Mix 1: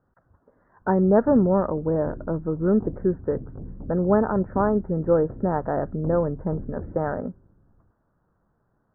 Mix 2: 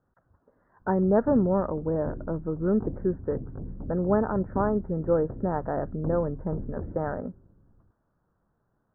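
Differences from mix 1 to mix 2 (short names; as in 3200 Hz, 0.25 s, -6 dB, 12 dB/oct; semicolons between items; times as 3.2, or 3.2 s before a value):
speech -4.0 dB; background: remove LPF 1200 Hz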